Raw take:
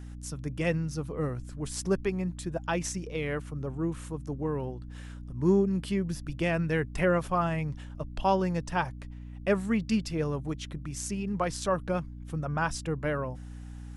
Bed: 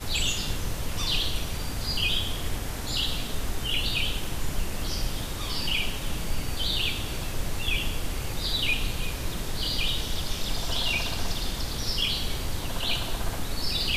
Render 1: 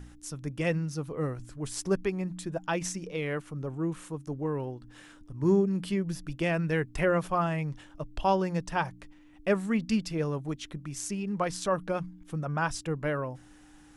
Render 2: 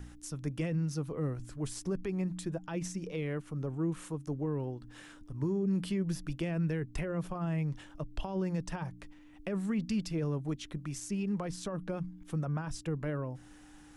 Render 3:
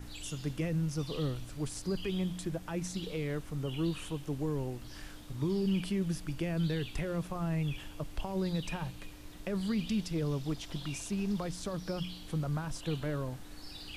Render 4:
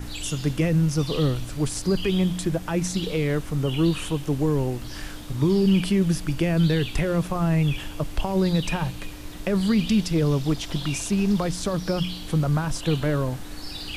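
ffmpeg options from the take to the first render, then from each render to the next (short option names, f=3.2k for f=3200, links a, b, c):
-af "bandreject=f=60:t=h:w=4,bandreject=f=120:t=h:w=4,bandreject=f=180:t=h:w=4,bandreject=f=240:t=h:w=4"
-filter_complex "[0:a]alimiter=limit=-23.5dB:level=0:latency=1:release=13,acrossover=split=380[a][b];[b]acompressor=threshold=-42dB:ratio=4[c];[a][c]amix=inputs=2:normalize=0"
-filter_complex "[1:a]volume=-19.5dB[a];[0:a][a]amix=inputs=2:normalize=0"
-af "volume=11.5dB"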